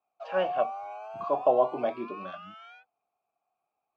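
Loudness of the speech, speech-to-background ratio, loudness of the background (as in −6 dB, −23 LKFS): −29.0 LKFS, 10.5 dB, −39.5 LKFS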